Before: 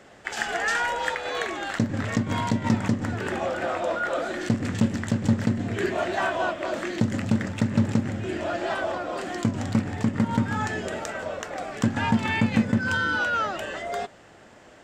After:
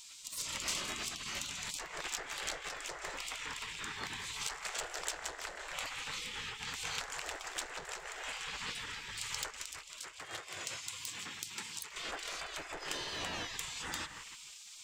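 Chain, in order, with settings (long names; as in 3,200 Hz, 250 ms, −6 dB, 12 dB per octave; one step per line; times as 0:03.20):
downward compressor 3 to 1, threshold −37 dBFS, peak gain reduction 16 dB
soft clipping −31.5 dBFS, distortion −14 dB
0:09.50–0:11.92: high-pass filter 530 Hz 6 dB per octave
bucket-brigade delay 156 ms, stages 2,048, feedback 58%, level −8.5 dB
gate on every frequency bin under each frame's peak −20 dB weak
high-shelf EQ 3,900 Hz +7.5 dB
level +7.5 dB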